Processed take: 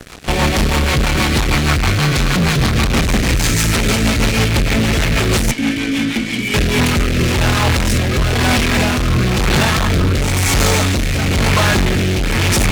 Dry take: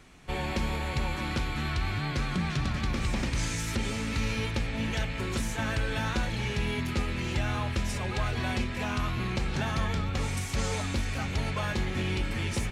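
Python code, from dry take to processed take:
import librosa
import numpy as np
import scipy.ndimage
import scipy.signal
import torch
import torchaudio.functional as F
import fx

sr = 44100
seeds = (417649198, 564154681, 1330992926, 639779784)

y = fx.vowel_filter(x, sr, vowel='i', at=(5.51, 6.54))
y = fx.fuzz(y, sr, gain_db=44.0, gate_db=-51.0)
y = fx.rotary_switch(y, sr, hz=6.3, then_hz=1.0, switch_at_s=6.13)
y = y * 10.0 ** (2.0 / 20.0)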